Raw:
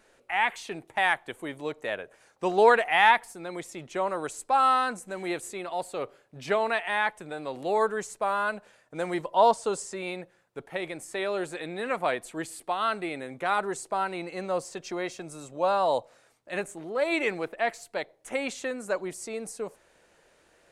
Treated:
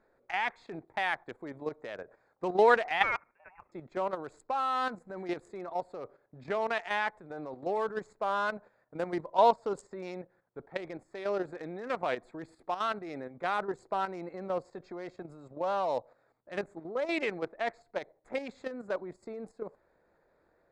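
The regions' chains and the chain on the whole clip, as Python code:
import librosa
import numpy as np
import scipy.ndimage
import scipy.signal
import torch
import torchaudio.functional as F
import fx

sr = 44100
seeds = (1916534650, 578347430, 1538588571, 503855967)

y = fx.chain(x, sr, fx.highpass(hz=1500.0, slope=6),
    fx.freq_invert(carrier_hz=3100), at=(3.03, 3.72))
y = fx.wiener(y, sr, points=15)
y = scipy.signal.sosfilt(scipy.signal.butter(2, 6700.0, 'lowpass', fs=sr, output='sos'), y)
y = fx.level_steps(y, sr, step_db=10)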